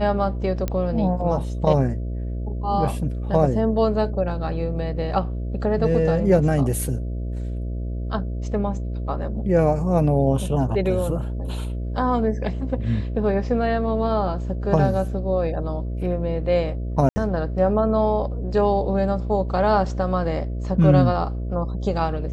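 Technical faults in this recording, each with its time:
buzz 60 Hz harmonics 11 -27 dBFS
0.68 pop -12 dBFS
17.09–17.16 gap 70 ms

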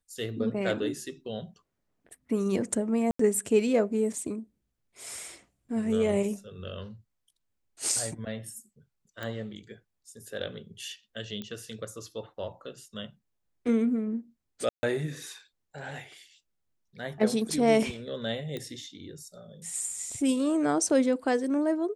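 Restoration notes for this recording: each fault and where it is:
3.11–3.19 gap 84 ms
9.23 pop -22 dBFS
11.42 pop -24 dBFS
14.69–14.83 gap 0.14 s
18.57 pop -22 dBFS

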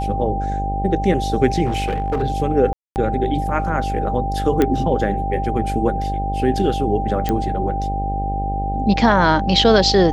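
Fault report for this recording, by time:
buzz 50 Hz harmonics 17 -24 dBFS
tone 790 Hz -23 dBFS
1.65–2.23 clipped -16 dBFS
2.73–2.96 gap 0.229 s
4.62 pop -5 dBFS
7.29 pop -7 dBFS

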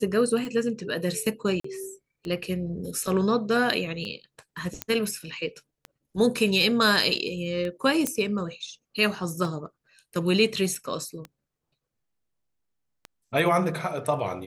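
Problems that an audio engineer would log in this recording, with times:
tick 33 1/3 rpm -22 dBFS
1.6–1.64 gap 44 ms
4.82 pop -11 dBFS
8.07 pop -9 dBFS
10.75 gap 3.3 ms

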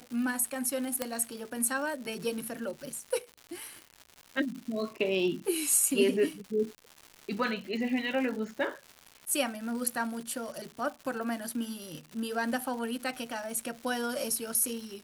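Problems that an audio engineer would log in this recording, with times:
crackle 250/s -38 dBFS
1.02 pop -14 dBFS

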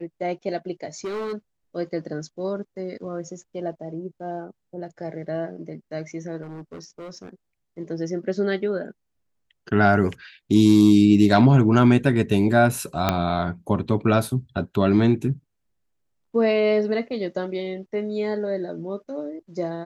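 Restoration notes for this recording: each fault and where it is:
1.04–1.34 clipped -26 dBFS
6.42–7.29 clipped -33.5 dBFS
13.09 pop -5 dBFS

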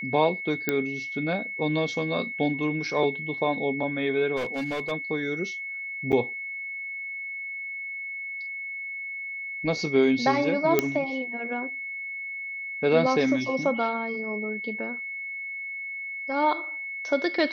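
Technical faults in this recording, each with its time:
tone 2200 Hz -32 dBFS
0.69 pop -10 dBFS
4.36–4.92 clipped -25.5 dBFS
6.12–6.13 gap 7 ms
10.79 pop -6 dBFS

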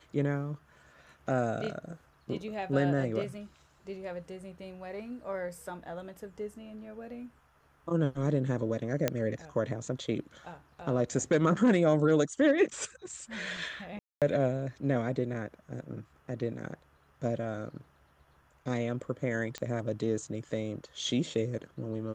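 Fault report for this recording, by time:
9.08 pop -12 dBFS
13.99–14.22 gap 0.227 s
19.58 pop -22 dBFS

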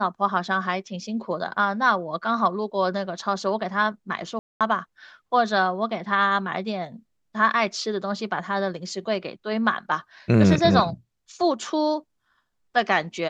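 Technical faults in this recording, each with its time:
4.39–4.61 gap 0.217 s

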